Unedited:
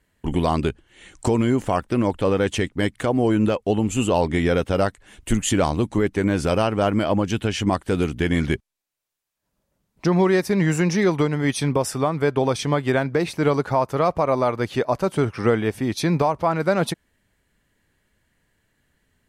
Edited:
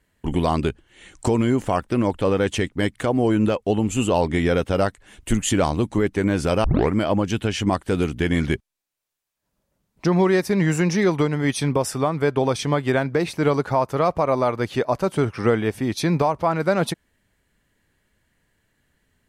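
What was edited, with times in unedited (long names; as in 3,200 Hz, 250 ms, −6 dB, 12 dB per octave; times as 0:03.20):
0:06.64: tape start 0.30 s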